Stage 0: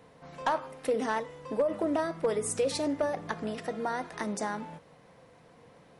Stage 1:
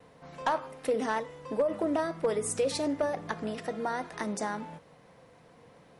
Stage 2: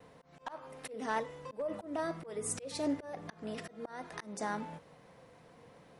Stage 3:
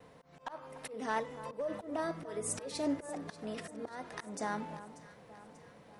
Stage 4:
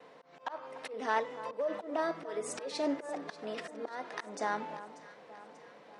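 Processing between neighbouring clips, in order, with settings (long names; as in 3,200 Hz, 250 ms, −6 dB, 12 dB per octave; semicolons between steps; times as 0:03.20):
noise gate with hold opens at −52 dBFS
volume swells 313 ms; level −1.5 dB
delay that swaps between a low-pass and a high-pass 294 ms, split 1,500 Hz, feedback 72%, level −13 dB
band-pass filter 330–5,300 Hz; level +4 dB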